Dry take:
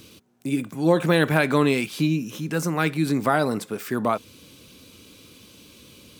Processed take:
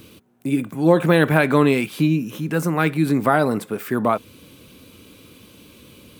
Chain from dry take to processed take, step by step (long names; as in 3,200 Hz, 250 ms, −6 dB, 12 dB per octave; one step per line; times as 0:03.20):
parametric band 5,600 Hz −8.5 dB 1.4 octaves
level +4 dB